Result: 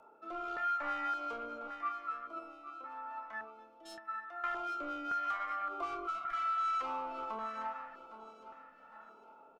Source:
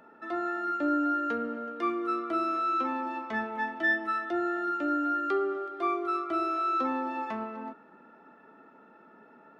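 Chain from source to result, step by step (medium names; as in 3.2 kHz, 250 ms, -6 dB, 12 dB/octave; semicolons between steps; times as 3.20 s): 1.67–4.44 s: gate -25 dBFS, range -15 dB; saturation -31 dBFS, distortion -10 dB; graphic EQ 125/250/1000/4000 Hz -12/-11/+5/-6 dB; rotary cabinet horn 0.85 Hz; doubling 27 ms -8 dB; feedback delay 809 ms, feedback 38%, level -13 dB; LFO notch square 0.88 Hz 390–1800 Hz; 6.10–6.70 s: spectral replace 220–1200 Hz after; compression 4:1, threshold -40 dBFS, peak gain reduction 6.5 dB; dynamic bell 1.3 kHz, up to +8 dB, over -57 dBFS, Q 1.1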